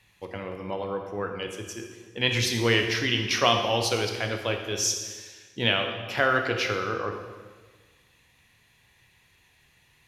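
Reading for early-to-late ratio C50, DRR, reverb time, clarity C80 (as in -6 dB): 5.5 dB, 3.5 dB, 1.4 s, 7.5 dB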